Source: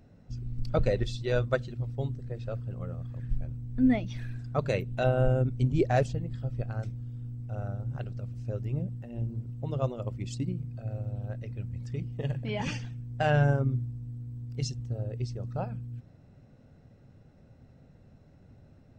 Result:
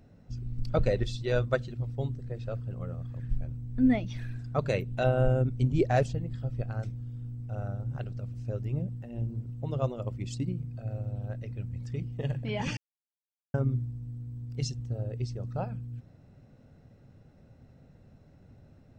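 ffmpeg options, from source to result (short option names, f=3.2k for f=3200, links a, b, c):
-filter_complex "[0:a]asplit=3[a][b][c];[a]atrim=end=12.77,asetpts=PTS-STARTPTS,afade=t=out:st=12.766:d=0.004:c=hsin[d];[b]atrim=start=12.77:end=13.54,asetpts=PTS-STARTPTS,volume=0[e];[c]atrim=start=13.54,asetpts=PTS-STARTPTS,afade=t=in:d=0.004:c=hsin[f];[d][e][f]concat=n=3:v=0:a=1"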